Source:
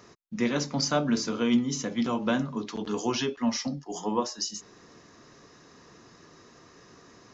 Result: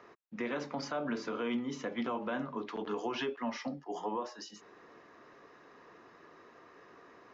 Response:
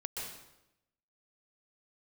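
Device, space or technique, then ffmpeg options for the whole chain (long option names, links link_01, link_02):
DJ mixer with the lows and highs turned down: -filter_complex "[0:a]acrossover=split=320 2900:gain=0.2 1 0.0794[link_01][link_02][link_03];[link_01][link_02][link_03]amix=inputs=3:normalize=0,alimiter=level_in=2dB:limit=-24dB:level=0:latency=1:release=98,volume=-2dB"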